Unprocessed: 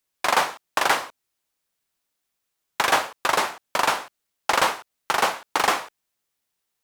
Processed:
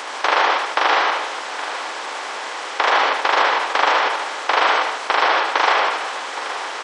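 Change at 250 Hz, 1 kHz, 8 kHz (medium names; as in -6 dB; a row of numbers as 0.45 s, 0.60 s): +2.0 dB, +7.0 dB, -3.0 dB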